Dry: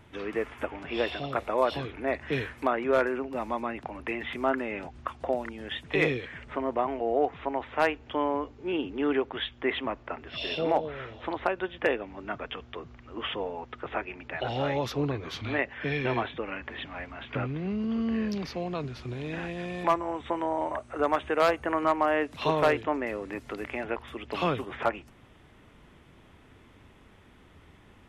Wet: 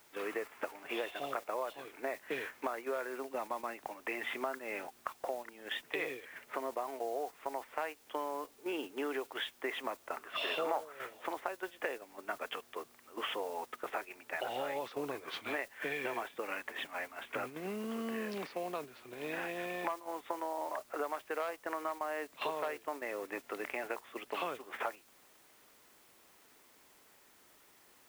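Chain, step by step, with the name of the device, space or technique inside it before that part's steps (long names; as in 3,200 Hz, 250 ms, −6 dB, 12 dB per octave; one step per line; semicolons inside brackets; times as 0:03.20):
baby monitor (band-pass filter 430–3,200 Hz; downward compressor 8 to 1, threshold −35 dBFS, peak gain reduction 16 dB; white noise bed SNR 17 dB; noise gate −42 dBFS, range −8 dB)
0:10.16–0:10.93: parametric band 1,200 Hz +12 dB 0.83 octaves
level +1 dB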